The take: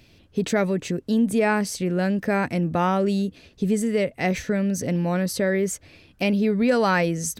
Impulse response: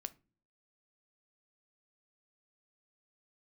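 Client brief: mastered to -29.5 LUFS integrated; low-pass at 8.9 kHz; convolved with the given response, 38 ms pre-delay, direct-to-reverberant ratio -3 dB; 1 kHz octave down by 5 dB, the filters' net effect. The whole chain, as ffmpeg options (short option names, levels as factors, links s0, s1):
-filter_complex "[0:a]lowpass=8900,equalizer=f=1000:t=o:g=-7,asplit=2[s0][s1];[1:a]atrim=start_sample=2205,adelay=38[s2];[s1][s2]afir=irnorm=-1:irlink=0,volume=2.11[s3];[s0][s3]amix=inputs=2:normalize=0,volume=0.316"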